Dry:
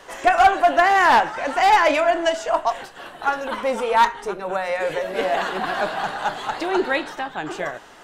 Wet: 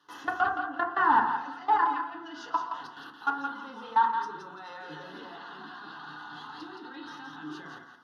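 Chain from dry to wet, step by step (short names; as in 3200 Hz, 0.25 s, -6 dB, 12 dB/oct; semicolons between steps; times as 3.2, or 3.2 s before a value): treble ducked by the level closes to 1600 Hz, closed at -12 dBFS; bell 470 Hz -8.5 dB 0.23 oct; fixed phaser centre 2300 Hz, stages 6; level quantiser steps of 22 dB; HPF 160 Hz 12 dB/oct; bell 1900 Hz -5.5 dB 0.42 oct; thinning echo 0.17 s, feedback 25%, high-pass 730 Hz, level -5.5 dB; FDN reverb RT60 0.51 s, low-frequency decay 1.45×, high-frequency decay 0.4×, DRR 1.5 dB; gain -2 dB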